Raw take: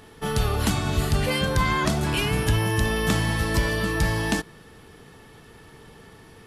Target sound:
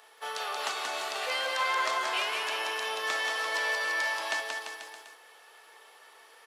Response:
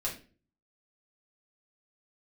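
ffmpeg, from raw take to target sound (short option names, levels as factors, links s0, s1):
-filter_complex "[0:a]highpass=f=580:w=0.5412,highpass=f=580:w=1.3066,asplit=2[s0][s1];[s1]aecho=0:1:180|342|487.8|619|737.1:0.631|0.398|0.251|0.158|0.1[s2];[s0][s2]amix=inputs=2:normalize=0,acrossover=split=7100[s3][s4];[s4]acompressor=threshold=0.00355:ratio=4:attack=1:release=60[s5];[s3][s5]amix=inputs=2:normalize=0,asplit=2[s6][s7];[s7]asetrate=55563,aresample=44100,atempo=0.793701,volume=0.2[s8];[s6][s8]amix=inputs=2:normalize=0,volume=0.596"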